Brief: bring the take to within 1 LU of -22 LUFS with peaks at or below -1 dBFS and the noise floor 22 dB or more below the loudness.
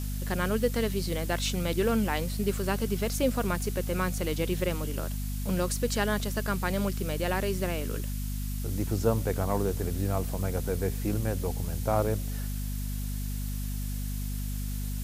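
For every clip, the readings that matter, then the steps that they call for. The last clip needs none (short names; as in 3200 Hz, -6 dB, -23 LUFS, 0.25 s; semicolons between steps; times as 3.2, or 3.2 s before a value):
hum 50 Hz; harmonics up to 250 Hz; hum level -30 dBFS; noise floor -33 dBFS; noise floor target -53 dBFS; loudness -30.5 LUFS; peak -11.0 dBFS; loudness target -22.0 LUFS
-> notches 50/100/150/200/250 Hz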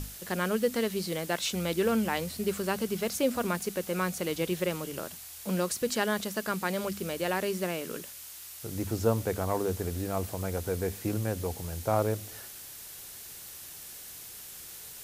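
hum none; noise floor -45 dBFS; noise floor target -54 dBFS
-> noise print and reduce 9 dB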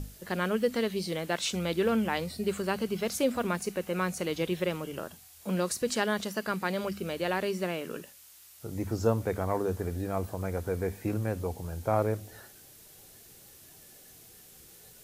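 noise floor -54 dBFS; loudness -31.5 LUFS; peak -11.5 dBFS; loudness target -22.0 LUFS
-> gain +9.5 dB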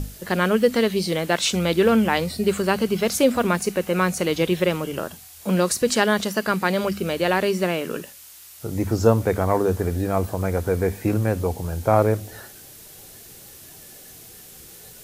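loudness -22.0 LUFS; peak -2.0 dBFS; noise floor -44 dBFS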